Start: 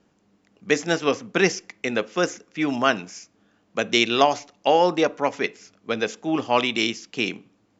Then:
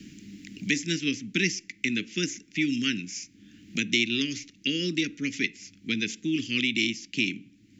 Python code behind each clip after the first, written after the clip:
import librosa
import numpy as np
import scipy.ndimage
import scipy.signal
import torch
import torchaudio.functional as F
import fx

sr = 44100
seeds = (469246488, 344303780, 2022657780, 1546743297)

y = scipy.signal.sosfilt(scipy.signal.cheby1(3, 1.0, [300.0, 2100.0], 'bandstop', fs=sr, output='sos'), x)
y = fx.band_squash(y, sr, depth_pct=70)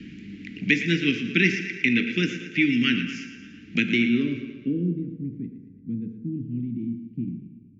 y = fx.filter_sweep_lowpass(x, sr, from_hz=2400.0, to_hz=160.0, start_s=3.78, end_s=5.02, q=1.1)
y = fx.echo_feedback(y, sr, ms=114, feedback_pct=56, wet_db=-11.5)
y = fx.rev_fdn(y, sr, rt60_s=1.6, lf_ratio=0.7, hf_ratio=0.55, size_ms=13.0, drr_db=6.5)
y = y * 10.0 ** (5.0 / 20.0)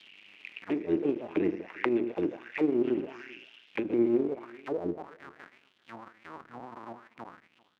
y = fx.cycle_switch(x, sr, every=2, mode='muted')
y = fx.auto_wah(y, sr, base_hz=340.0, top_hz=3900.0, q=4.2, full_db=-22.0, direction='down')
y = y + 10.0 ** (-23.5 / 20.0) * np.pad(y, (int(390 * sr / 1000.0), 0))[:len(y)]
y = y * 10.0 ** (5.0 / 20.0)